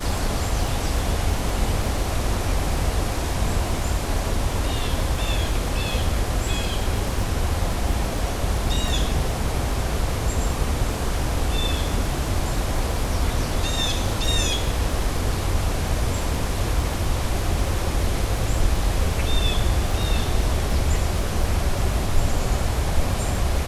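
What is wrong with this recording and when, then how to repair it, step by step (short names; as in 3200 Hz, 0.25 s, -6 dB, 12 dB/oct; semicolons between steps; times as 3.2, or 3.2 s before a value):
crackle 20/s -27 dBFS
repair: de-click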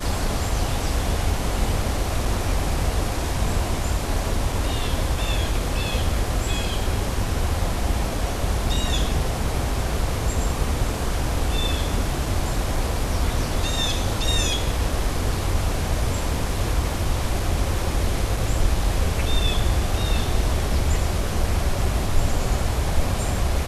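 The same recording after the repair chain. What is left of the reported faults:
none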